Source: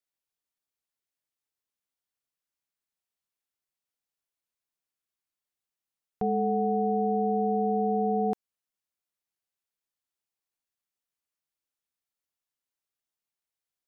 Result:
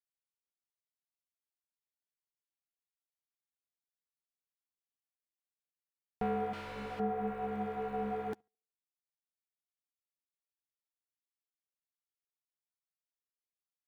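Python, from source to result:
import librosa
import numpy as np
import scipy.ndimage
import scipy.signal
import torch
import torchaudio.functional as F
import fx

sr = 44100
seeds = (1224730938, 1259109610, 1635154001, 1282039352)

y = fx.echo_banded(x, sr, ms=72, feedback_pct=43, hz=490.0, wet_db=-23.5)
y = fx.leveller(y, sr, passes=2)
y = fx.clip_hard(y, sr, threshold_db=-26.5, at=(6.53, 7.0))
y = fx.chorus_voices(y, sr, voices=4, hz=1.1, base_ms=10, depth_ms=3.0, mix_pct=20)
y = fx.dereverb_blind(y, sr, rt60_s=1.6)
y = y * librosa.db_to_amplitude(-6.0)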